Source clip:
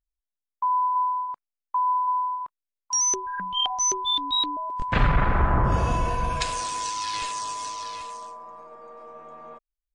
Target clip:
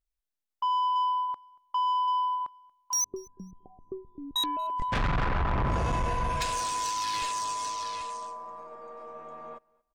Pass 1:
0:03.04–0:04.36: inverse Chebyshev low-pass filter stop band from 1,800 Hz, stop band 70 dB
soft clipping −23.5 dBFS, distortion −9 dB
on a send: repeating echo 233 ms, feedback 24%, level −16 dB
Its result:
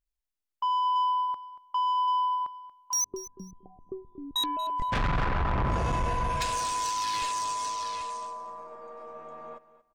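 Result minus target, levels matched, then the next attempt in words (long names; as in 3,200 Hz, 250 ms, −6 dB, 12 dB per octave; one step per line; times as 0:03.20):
echo-to-direct +10.5 dB
0:03.04–0:04.36: inverse Chebyshev low-pass filter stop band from 1,800 Hz, stop band 70 dB
soft clipping −23.5 dBFS, distortion −9 dB
on a send: repeating echo 233 ms, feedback 24%, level −26.5 dB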